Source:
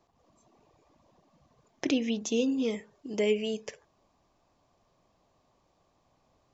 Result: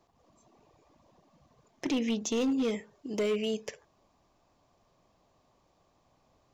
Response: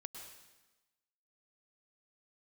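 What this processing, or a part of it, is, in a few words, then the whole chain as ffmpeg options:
limiter into clipper: -af "alimiter=limit=-20.5dB:level=0:latency=1:release=13,asoftclip=type=hard:threshold=-25.5dB,volume=1dB"

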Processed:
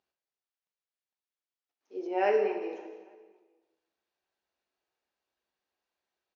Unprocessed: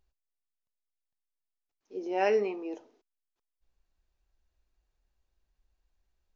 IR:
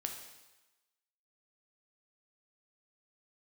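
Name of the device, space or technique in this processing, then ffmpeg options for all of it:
supermarket ceiling speaker: -filter_complex "[0:a]highpass=320,lowpass=5.1k[a];[1:a]atrim=start_sample=2205[b];[a][b]afir=irnorm=-1:irlink=0,asettb=1/sr,asplit=3[c][d][e];[c]atrim=end=2.074[f];[d]atrim=start=2.07:end=2.62,asetpts=PTS-STARTPTS,afade=t=in:d=0.004:c=qsin,afade=t=out:st=0.546:d=0.004:c=qsin,highshelf=f=4.6k:g=-10[g];[e]atrim=start=2.616[h];[f][g]acrossfade=d=0.004:c1=hsin:c2=qsin[i];[i][h]acrossfade=d=0.004:c1=qsin:c2=hsin,asplit=2[j][k];[k]adelay=282,lowpass=f=4k:p=1,volume=-19dB,asplit=2[l][m];[m]adelay=282,lowpass=f=4k:p=1,volume=0.43,asplit=2[n][o];[o]adelay=282,lowpass=f=4k:p=1,volume=0.43[p];[j][l][n][p]amix=inputs=4:normalize=0,volume=1.5dB"

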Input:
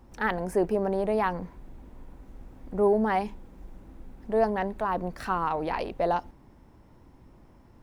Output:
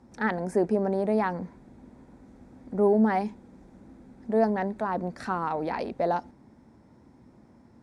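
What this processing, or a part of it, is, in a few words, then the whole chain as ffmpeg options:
car door speaker: -af "highpass=94,equalizer=f=230:t=q:w=4:g=7,equalizer=f=1.1k:t=q:w=4:g=-4,equalizer=f=2.9k:t=q:w=4:g=-9,lowpass=f=9.5k:w=0.5412,lowpass=f=9.5k:w=1.3066"

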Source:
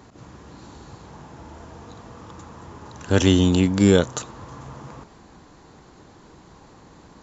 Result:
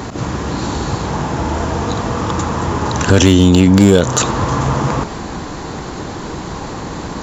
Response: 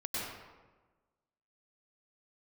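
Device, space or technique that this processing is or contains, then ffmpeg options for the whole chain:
loud club master: -af "acompressor=threshold=-21dB:ratio=2.5,asoftclip=type=hard:threshold=-15.5dB,alimiter=level_in=24dB:limit=-1dB:release=50:level=0:latency=1,volume=-1dB"

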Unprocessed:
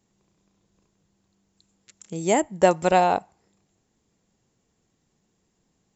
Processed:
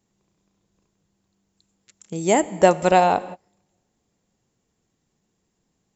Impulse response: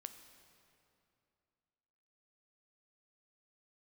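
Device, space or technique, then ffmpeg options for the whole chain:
keyed gated reverb: -filter_complex "[0:a]asplit=3[a][b][c];[1:a]atrim=start_sample=2205[d];[b][d]afir=irnorm=-1:irlink=0[e];[c]apad=whole_len=262462[f];[e][f]sidechaingate=range=-33dB:threshold=-42dB:ratio=16:detection=peak,volume=2.5dB[g];[a][g]amix=inputs=2:normalize=0,volume=-2dB"

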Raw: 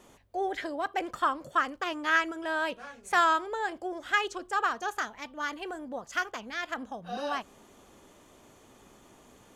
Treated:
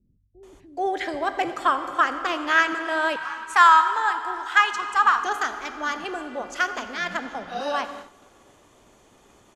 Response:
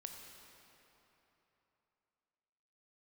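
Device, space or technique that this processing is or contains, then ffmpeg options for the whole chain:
keyed gated reverb: -filter_complex "[0:a]lowpass=11k,asplit=3[a][b][c];[1:a]atrim=start_sample=2205[d];[b][d]afir=irnorm=-1:irlink=0[e];[c]apad=whole_len=421318[f];[e][f]sidechaingate=range=-16dB:threshold=-53dB:ratio=16:detection=peak,volume=6dB[g];[a][g]amix=inputs=2:normalize=0,asettb=1/sr,asplit=3[h][i][j];[h]atrim=end=2.734[k];[i]atrim=start=2.73:end=4.81,asetpts=PTS-STARTPTS,afade=t=in:d=0.004:c=qsin,afade=t=out:st=2.076:d=0.004:c=qsin,lowshelf=f=760:t=q:w=3:g=-8[l];[j]atrim=start=4.806[m];[k][l]acrossfade=d=0.004:c1=hsin:c2=qsin[n];[n][m]acrossfade=d=0.004:c1=qsin:c2=hsin,acrossover=split=210[o][p];[p]adelay=430[q];[o][q]amix=inputs=2:normalize=0"

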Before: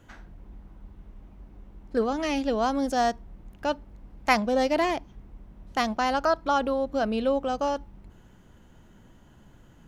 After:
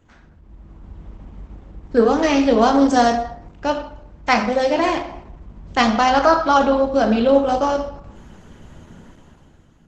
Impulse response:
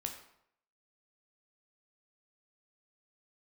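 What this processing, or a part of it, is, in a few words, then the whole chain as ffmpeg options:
speakerphone in a meeting room: -filter_complex "[1:a]atrim=start_sample=2205[a];[0:a][a]afir=irnorm=-1:irlink=0,dynaudnorm=f=180:g=9:m=13.5dB" -ar 48000 -c:a libopus -b:a 12k

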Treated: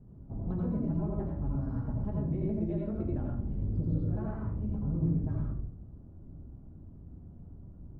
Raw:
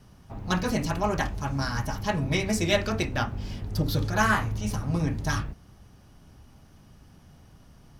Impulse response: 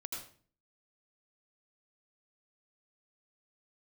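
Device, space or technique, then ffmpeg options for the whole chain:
television next door: -filter_complex "[0:a]acompressor=threshold=-31dB:ratio=5,lowpass=370[a];[1:a]atrim=start_sample=2205[b];[a][b]afir=irnorm=-1:irlink=0,volume=5.5dB"

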